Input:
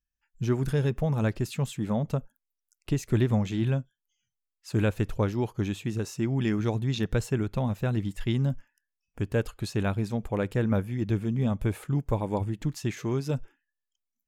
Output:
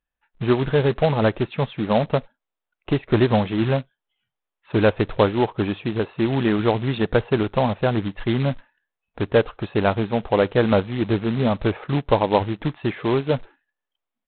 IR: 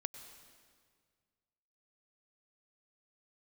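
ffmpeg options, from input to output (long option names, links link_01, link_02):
-af "equalizer=frequency=730:width=0.44:gain=14,aresample=8000,acrusher=bits=3:mode=log:mix=0:aa=0.000001,aresample=44100"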